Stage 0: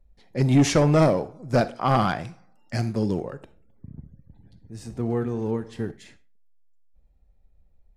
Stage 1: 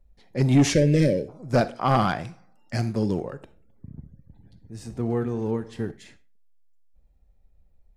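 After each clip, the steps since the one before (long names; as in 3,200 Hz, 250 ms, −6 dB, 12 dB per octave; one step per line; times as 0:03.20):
gain on a spectral selection 0:00.74–0:01.28, 620–1,500 Hz −28 dB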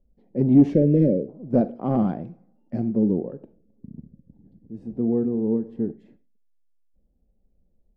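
drawn EQ curve 110 Hz 0 dB, 220 Hz +14 dB, 350 Hz +10 dB, 510 Hz +8 dB, 1,300 Hz −11 dB, 3,000 Hz −15 dB, 6,700 Hz −27 dB
level −7 dB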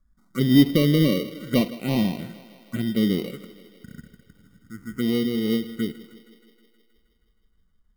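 decimation without filtering 26×
phaser swept by the level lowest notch 460 Hz, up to 1,400 Hz, full sweep at −20.5 dBFS
feedback echo with a high-pass in the loop 158 ms, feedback 71%, high-pass 180 Hz, level −17 dB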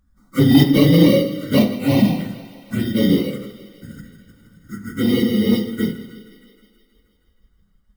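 random phases in long frames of 50 ms
soft clipping −10 dBFS, distortion −19 dB
convolution reverb RT60 0.70 s, pre-delay 3 ms, DRR 6.5 dB
level +5.5 dB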